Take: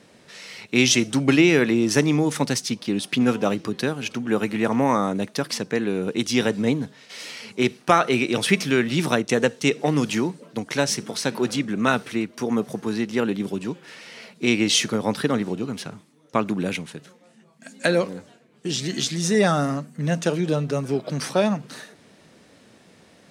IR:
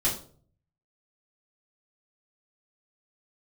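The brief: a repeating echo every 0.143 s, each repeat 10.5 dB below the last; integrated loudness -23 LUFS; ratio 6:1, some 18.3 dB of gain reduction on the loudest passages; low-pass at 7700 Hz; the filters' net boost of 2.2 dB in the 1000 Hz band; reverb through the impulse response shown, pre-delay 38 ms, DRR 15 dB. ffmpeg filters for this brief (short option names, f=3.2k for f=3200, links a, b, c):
-filter_complex "[0:a]lowpass=7.7k,equalizer=f=1k:t=o:g=3,acompressor=threshold=-32dB:ratio=6,aecho=1:1:143|286|429:0.299|0.0896|0.0269,asplit=2[a][b];[1:a]atrim=start_sample=2205,adelay=38[c];[b][c]afir=irnorm=-1:irlink=0,volume=-24dB[d];[a][d]amix=inputs=2:normalize=0,volume=12.5dB"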